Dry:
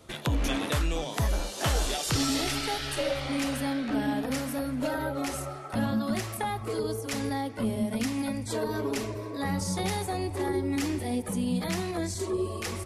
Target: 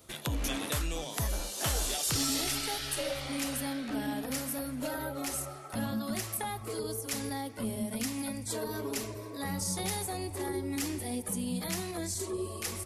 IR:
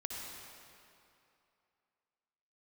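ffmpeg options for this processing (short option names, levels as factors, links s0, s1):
-af "aemphasis=mode=production:type=50kf,aeval=exprs='0.376*(cos(1*acos(clip(val(0)/0.376,-1,1)))-cos(1*PI/2))+0.00944*(cos(5*acos(clip(val(0)/0.376,-1,1)))-cos(5*PI/2))':c=same,volume=0.447"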